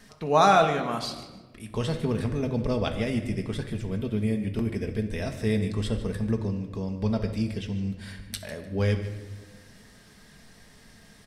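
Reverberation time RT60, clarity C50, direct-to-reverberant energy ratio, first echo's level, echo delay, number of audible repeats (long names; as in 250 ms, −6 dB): 1.3 s, 8.5 dB, 4.0 dB, −14.5 dB, 150 ms, 2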